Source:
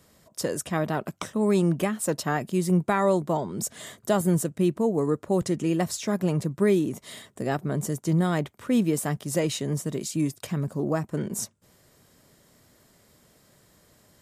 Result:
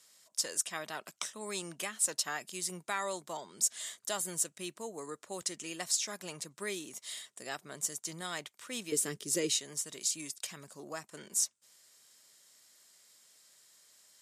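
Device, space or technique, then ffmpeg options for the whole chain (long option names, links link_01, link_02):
piezo pickup straight into a mixer: -filter_complex "[0:a]lowpass=7400,aderivative,asettb=1/sr,asplit=3[link_01][link_02][link_03];[link_01]atrim=end=8.924[link_04];[link_02]atrim=start=8.92:end=9.6,asetpts=PTS-STARTPTS,afade=type=in:duration=0.004:curve=qsin,afade=type=out:start_time=0.676:duration=0.004:curve=qsin,lowshelf=frequency=540:width_type=q:width=3:gain=9[link_05];[link_03]atrim=start=9.596[link_06];[link_04][link_05]acrossfade=duration=0.004:curve1=hsin:curve2=qsin[link_07];[link_07][link_06]acrossfade=duration=0.004:curve1=qsin:curve2=hsin,volume=6dB"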